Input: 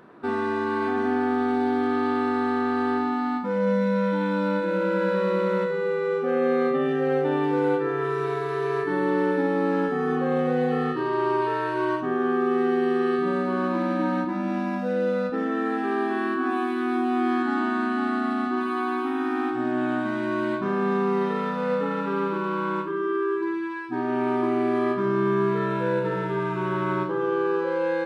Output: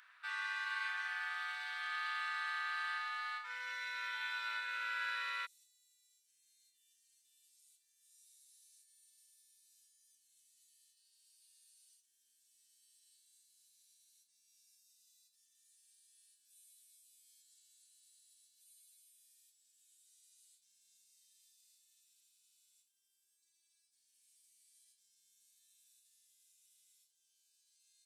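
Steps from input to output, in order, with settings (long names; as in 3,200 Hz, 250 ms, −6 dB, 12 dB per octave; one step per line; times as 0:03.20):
inverse Chebyshev high-pass filter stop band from 280 Hz, stop band 80 dB, from 0:05.45 stop band from 1,300 Hz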